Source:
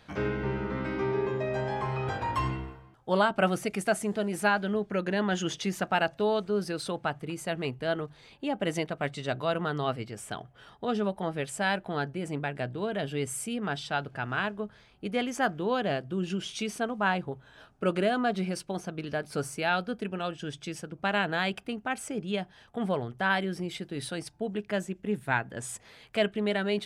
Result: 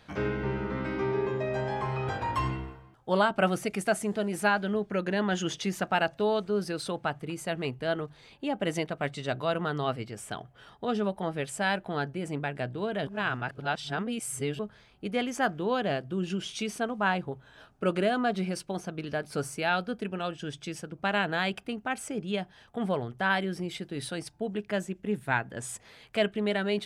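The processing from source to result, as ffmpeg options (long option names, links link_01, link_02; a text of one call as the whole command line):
ffmpeg -i in.wav -filter_complex "[0:a]asplit=3[link_01][link_02][link_03];[link_01]atrim=end=13.072[link_04];[link_02]atrim=start=13.068:end=14.592,asetpts=PTS-STARTPTS,areverse[link_05];[link_03]atrim=start=14.588[link_06];[link_04][link_05]acrossfade=duration=0.004:curve1=hsin:curve2=hsin[link_07];[link_07][link_06]acrossfade=duration=0.004:curve1=hsin:curve2=hsin" out.wav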